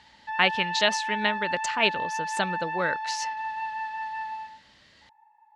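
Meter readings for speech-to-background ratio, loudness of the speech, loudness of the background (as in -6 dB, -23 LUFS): 4.5 dB, -27.0 LUFS, -31.5 LUFS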